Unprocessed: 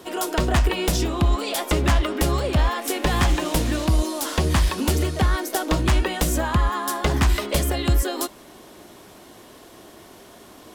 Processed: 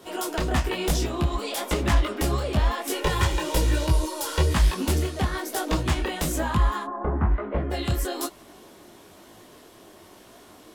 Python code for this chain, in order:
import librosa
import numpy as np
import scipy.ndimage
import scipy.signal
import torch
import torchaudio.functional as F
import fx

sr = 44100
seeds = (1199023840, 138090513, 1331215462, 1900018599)

y = fx.comb(x, sr, ms=2.1, depth=0.67, at=(2.93, 4.52))
y = fx.lowpass(y, sr, hz=fx.line((6.83, 1100.0), (7.7, 1900.0)), slope=24, at=(6.83, 7.7), fade=0.02)
y = fx.detune_double(y, sr, cents=37)